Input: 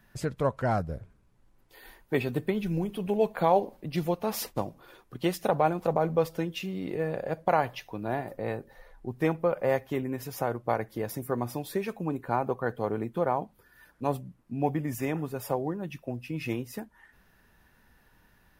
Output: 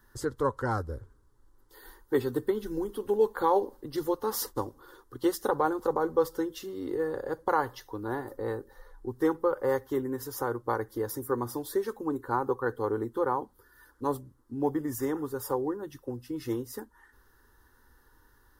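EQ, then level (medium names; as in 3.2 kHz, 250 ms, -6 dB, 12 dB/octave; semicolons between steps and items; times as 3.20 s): static phaser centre 660 Hz, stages 6; +3.0 dB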